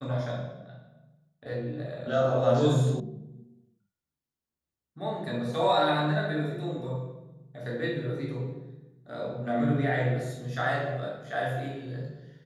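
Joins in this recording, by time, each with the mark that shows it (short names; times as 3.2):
3 sound cut off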